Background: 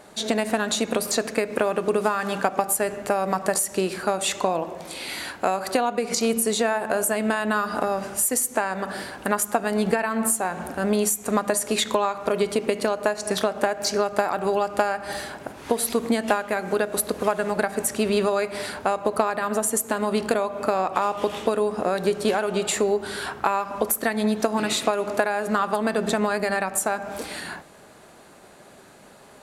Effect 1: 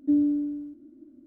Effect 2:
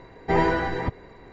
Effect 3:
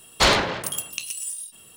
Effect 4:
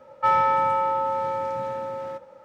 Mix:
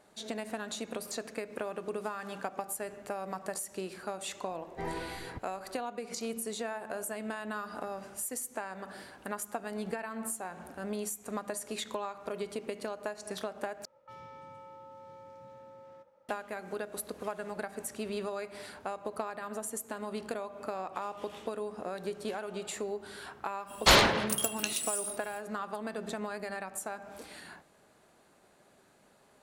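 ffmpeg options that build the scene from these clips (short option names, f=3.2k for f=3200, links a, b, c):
-filter_complex "[0:a]volume=-14.5dB[a];[4:a]acrossover=split=430|3000[b][c][d];[c]acompressor=threshold=-34dB:ratio=6:attack=3.2:release=140:knee=2.83:detection=peak[e];[b][e][d]amix=inputs=3:normalize=0[f];[a]asplit=2[g][h];[g]atrim=end=13.854[i];[f]atrim=end=2.44,asetpts=PTS-STARTPTS,volume=-17.5dB[j];[h]atrim=start=16.286[k];[2:a]atrim=end=1.32,asetpts=PTS-STARTPTS,volume=-16.5dB,afade=t=in:d=0.004:c=hsin,afade=t=out:st=1.316:d=0.004:c=hsin,adelay=198009S[l];[3:a]atrim=end=1.76,asetpts=PTS-STARTPTS,volume=-3dB,afade=t=in:d=0.05,afade=t=out:st=1.71:d=0.05,adelay=23660[m];[i][j]acrossfade=d=0.004:c1=hsin:c2=hsin[n];[n][k]acrossfade=d=0.004:c1=hsin:c2=hsin[o];[o][l][m]amix=inputs=3:normalize=0"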